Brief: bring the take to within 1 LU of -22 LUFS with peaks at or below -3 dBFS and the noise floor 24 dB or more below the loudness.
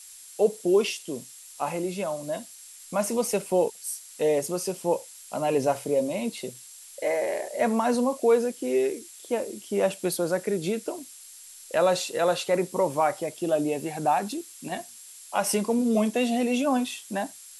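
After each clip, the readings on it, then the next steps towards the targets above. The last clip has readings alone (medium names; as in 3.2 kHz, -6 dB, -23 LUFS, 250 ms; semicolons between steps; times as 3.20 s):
steady tone 7.6 kHz; tone level -52 dBFS; noise floor -47 dBFS; noise floor target -51 dBFS; loudness -27.0 LUFS; peak level -10.5 dBFS; loudness target -22.0 LUFS
-> band-stop 7.6 kHz, Q 30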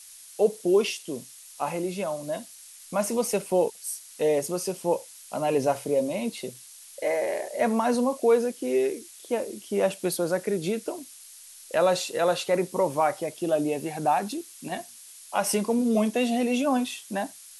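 steady tone not found; noise floor -48 dBFS; noise floor target -51 dBFS
-> noise print and reduce 6 dB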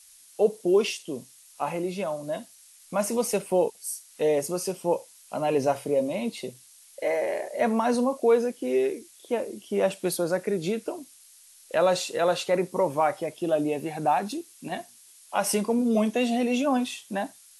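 noise floor -54 dBFS; loudness -27.0 LUFS; peak level -11.0 dBFS; loudness target -22.0 LUFS
-> trim +5 dB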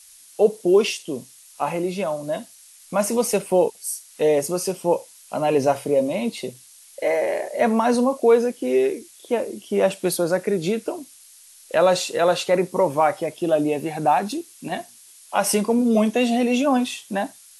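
loudness -22.0 LUFS; peak level -6.0 dBFS; noise floor -49 dBFS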